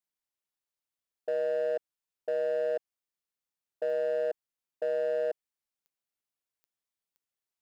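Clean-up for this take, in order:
clipped peaks rebuilt −25 dBFS
click removal

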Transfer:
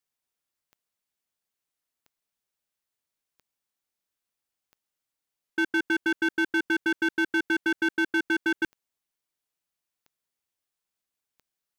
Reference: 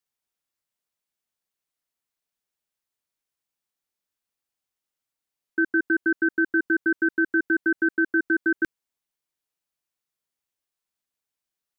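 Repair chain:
clipped peaks rebuilt −20.5 dBFS
click removal

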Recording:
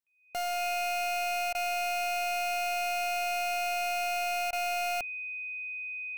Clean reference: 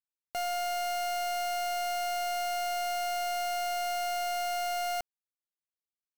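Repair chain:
notch filter 2,500 Hz, Q 30
repair the gap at 0:01.53/0:04.51, 17 ms

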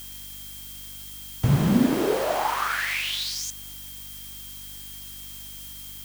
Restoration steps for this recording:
hum removal 49.2 Hz, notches 6
notch filter 3,200 Hz, Q 30
noise reduction from a noise print 30 dB

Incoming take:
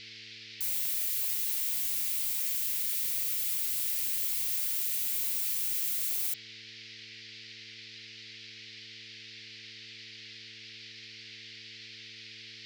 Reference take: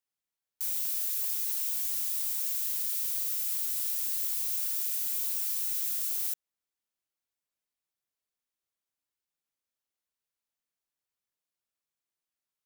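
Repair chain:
hum removal 111.1 Hz, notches 4
noise reduction from a noise print 30 dB

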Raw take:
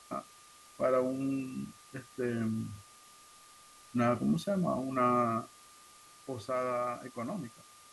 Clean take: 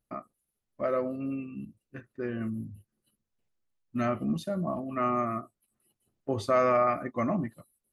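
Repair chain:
notch filter 1,200 Hz, Q 30
broadband denoise 26 dB, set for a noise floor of −57 dBFS
level correction +9.5 dB, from 0:06.19

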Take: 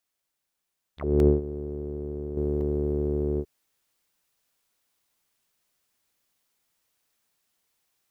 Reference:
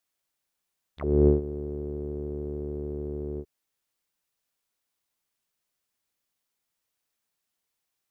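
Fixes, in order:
repair the gap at 0:01.20/0:02.61/0:04.36, 1 ms
level 0 dB, from 0:02.37 −7 dB

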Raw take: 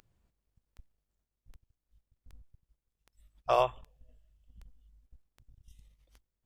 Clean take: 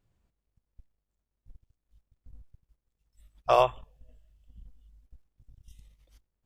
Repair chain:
click removal
level 0 dB, from 0:01.26 +4.5 dB

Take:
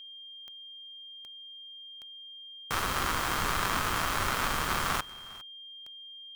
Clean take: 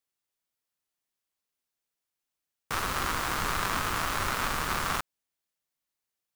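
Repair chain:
click removal
notch filter 3,200 Hz, Q 30
echo removal 405 ms −21 dB

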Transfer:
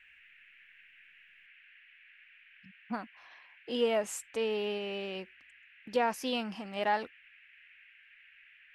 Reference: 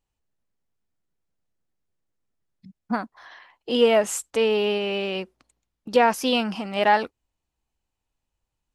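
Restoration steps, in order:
noise reduction from a noise print 22 dB
level 0 dB, from 0:01.46 +11 dB

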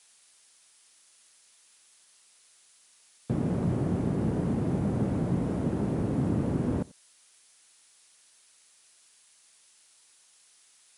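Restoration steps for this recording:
noise reduction from a noise print 15 dB
echo removal 90 ms −23.5 dB

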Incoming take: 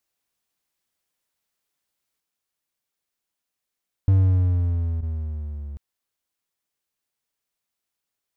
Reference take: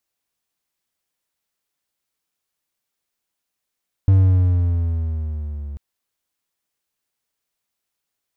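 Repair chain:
repair the gap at 0:05.01, 16 ms
level 0 dB, from 0:02.20 +3.5 dB

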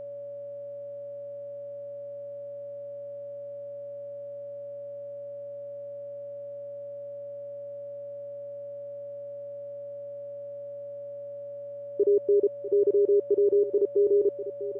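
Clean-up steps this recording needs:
hum removal 118.9 Hz, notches 31
notch filter 570 Hz, Q 30
echo removal 647 ms −12.5 dB

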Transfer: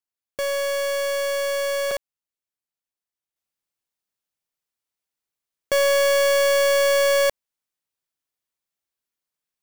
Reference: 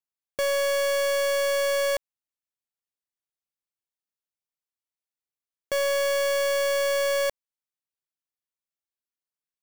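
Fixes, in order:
repair the gap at 0:01.91, 3.8 ms
level 0 dB, from 0:03.36 −6 dB

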